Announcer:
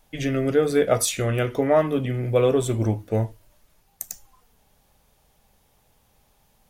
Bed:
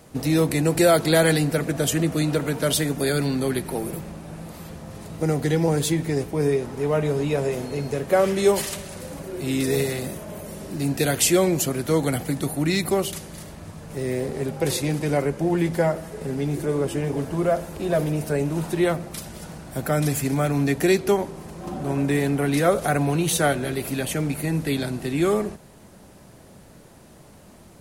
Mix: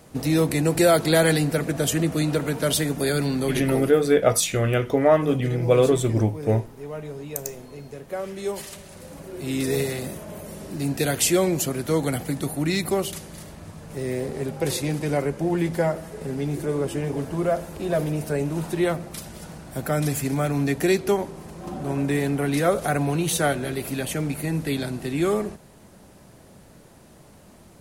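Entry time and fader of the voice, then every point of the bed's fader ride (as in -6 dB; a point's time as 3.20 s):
3.35 s, +1.5 dB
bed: 3.75 s -0.5 dB
4.06 s -12 dB
8.26 s -12 dB
9.65 s -1.5 dB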